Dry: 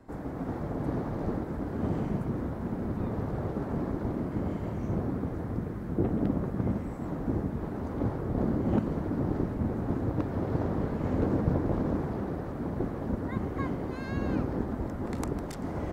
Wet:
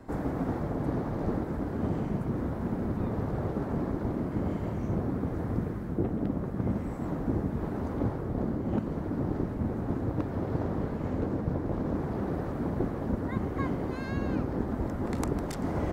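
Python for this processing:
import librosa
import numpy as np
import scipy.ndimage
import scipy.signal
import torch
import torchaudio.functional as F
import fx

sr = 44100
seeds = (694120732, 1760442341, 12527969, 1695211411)

y = fx.rider(x, sr, range_db=10, speed_s=0.5)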